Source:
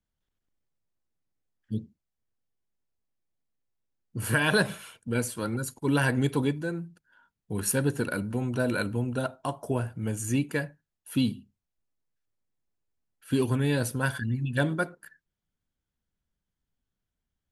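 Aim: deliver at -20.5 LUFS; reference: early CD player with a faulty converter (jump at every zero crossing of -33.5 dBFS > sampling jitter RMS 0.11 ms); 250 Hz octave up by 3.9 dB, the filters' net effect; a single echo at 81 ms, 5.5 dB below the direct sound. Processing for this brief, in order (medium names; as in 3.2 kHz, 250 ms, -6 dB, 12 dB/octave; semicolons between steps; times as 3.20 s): peaking EQ 250 Hz +4.5 dB; delay 81 ms -5.5 dB; jump at every zero crossing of -33.5 dBFS; sampling jitter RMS 0.11 ms; trim +4 dB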